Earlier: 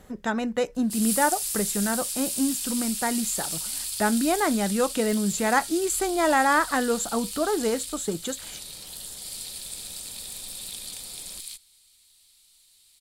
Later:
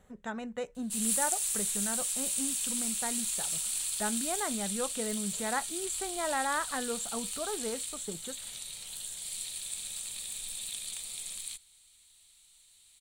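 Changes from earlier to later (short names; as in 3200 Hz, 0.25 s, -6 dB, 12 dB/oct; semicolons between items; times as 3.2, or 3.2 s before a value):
speech -10.5 dB; master: add thirty-one-band EQ 315 Hz -8 dB, 5000 Hz -11 dB, 8000 Hz +3 dB, 12500 Hz -11 dB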